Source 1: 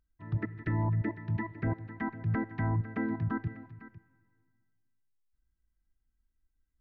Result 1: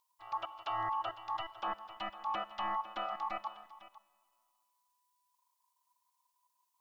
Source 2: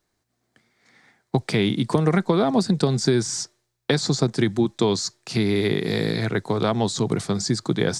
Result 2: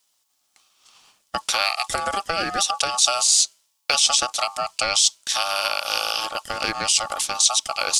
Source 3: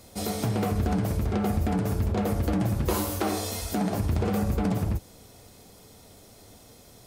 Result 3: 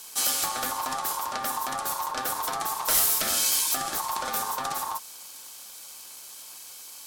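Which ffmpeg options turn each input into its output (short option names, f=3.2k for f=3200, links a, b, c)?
-af "aexciter=amount=7.8:drive=2.4:freq=2.4k,aeval=exprs='val(0)*sin(2*PI*990*n/s)':c=same,volume=-3.5dB"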